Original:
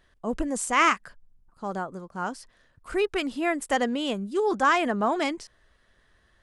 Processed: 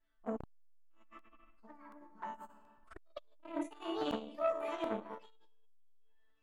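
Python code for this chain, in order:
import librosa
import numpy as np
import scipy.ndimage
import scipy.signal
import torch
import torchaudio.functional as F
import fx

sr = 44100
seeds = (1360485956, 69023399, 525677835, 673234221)

y = fx.pitch_trill(x, sr, semitones=7.0, every_ms=334)
y = fx.high_shelf(y, sr, hz=4200.0, db=-10.0)
y = fx.hum_notches(y, sr, base_hz=60, count=4)
y = fx.level_steps(y, sr, step_db=15)
y = fx.resonator_bank(y, sr, root=57, chord='sus4', decay_s=0.55)
y = fx.env_flanger(y, sr, rest_ms=7.9, full_db=-50.0)
y = fx.echo_feedback(y, sr, ms=76, feedback_pct=28, wet_db=-17.5)
y = fx.rev_spring(y, sr, rt60_s=1.2, pass_ms=(38, 54), chirp_ms=65, drr_db=6.0)
y = fx.buffer_crackle(y, sr, first_s=0.46, period_s=0.73, block=64, kind='repeat')
y = fx.transformer_sat(y, sr, knee_hz=820.0)
y = F.gain(torch.from_numpy(y), 18.0).numpy()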